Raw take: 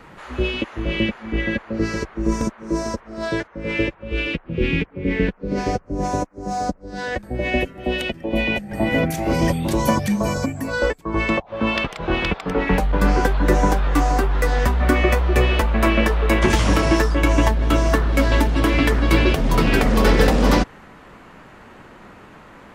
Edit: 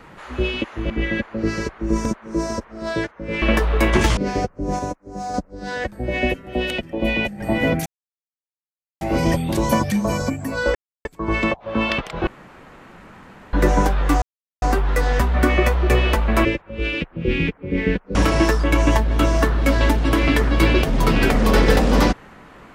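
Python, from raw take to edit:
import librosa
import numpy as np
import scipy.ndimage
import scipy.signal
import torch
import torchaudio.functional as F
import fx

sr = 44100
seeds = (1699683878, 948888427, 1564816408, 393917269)

y = fx.edit(x, sr, fx.cut(start_s=0.9, length_s=0.36),
    fx.swap(start_s=3.78, length_s=1.7, other_s=15.91, other_length_s=0.75),
    fx.clip_gain(start_s=6.1, length_s=0.55, db=-4.0),
    fx.insert_silence(at_s=9.17, length_s=1.15),
    fx.insert_silence(at_s=10.91, length_s=0.3),
    fx.room_tone_fill(start_s=12.13, length_s=1.26),
    fx.insert_silence(at_s=14.08, length_s=0.4), tone=tone)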